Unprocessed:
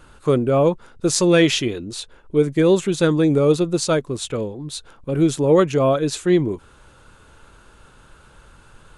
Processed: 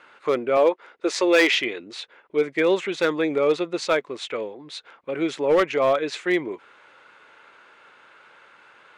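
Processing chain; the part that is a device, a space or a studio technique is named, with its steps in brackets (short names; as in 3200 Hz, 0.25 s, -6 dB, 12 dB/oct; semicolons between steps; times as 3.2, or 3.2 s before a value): megaphone (BPF 480–3700 Hz; bell 2100 Hz +9.5 dB 0.51 oct; hard clip -12.5 dBFS, distortion -18 dB); 0.57–1.52 resonant low shelf 230 Hz -11.5 dB, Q 1.5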